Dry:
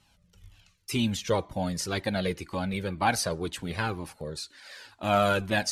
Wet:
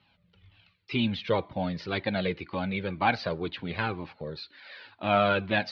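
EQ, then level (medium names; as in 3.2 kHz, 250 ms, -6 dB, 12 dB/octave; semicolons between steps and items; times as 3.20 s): high-pass 94 Hz; steep low-pass 4.3 kHz 48 dB/octave; peaking EQ 2.3 kHz +4 dB 0.27 oct; 0.0 dB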